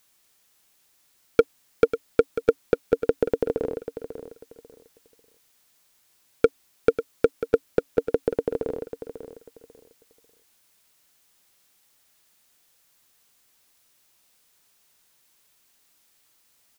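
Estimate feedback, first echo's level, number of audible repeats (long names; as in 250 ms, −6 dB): 23%, −11.0 dB, 2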